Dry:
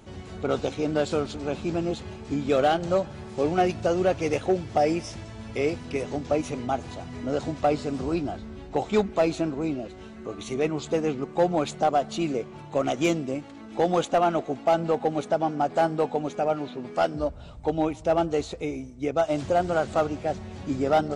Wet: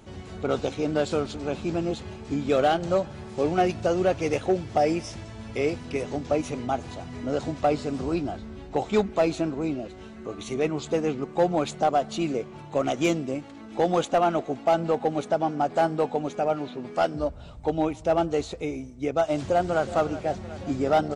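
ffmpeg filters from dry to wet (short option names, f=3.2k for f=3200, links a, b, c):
-filter_complex "[0:a]asplit=2[a][b];[b]afade=t=in:st=19.43:d=0.01,afade=t=out:st=19.84:d=0.01,aecho=0:1:370|740|1110|1480|1850|2220|2590|2960|3330:0.188365|0.131855|0.0922988|0.0646092|0.0452264|0.0316585|0.0221609|0.0155127|0.0108589[c];[a][c]amix=inputs=2:normalize=0"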